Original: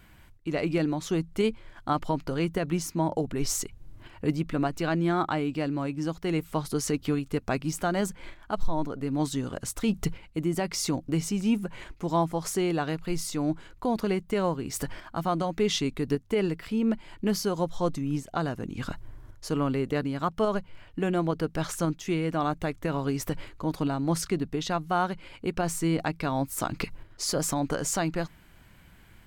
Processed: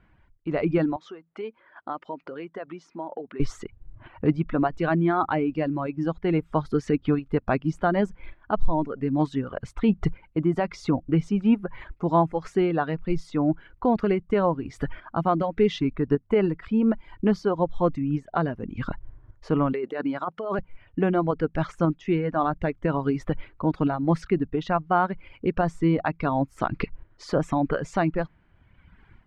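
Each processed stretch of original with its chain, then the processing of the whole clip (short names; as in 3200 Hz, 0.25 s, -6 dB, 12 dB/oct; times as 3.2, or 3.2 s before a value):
0.96–3.4 compressor 2.5:1, threshold -36 dBFS + BPF 360–6200 Hz
19.73–20.59 HPF 260 Hz + negative-ratio compressor -31 dBFS
whole clip: reverb removal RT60 1.4 s; LPF 1900 Hz 12 dB/oct; AGC gain up to 10.5 dB; gain -4.5 dB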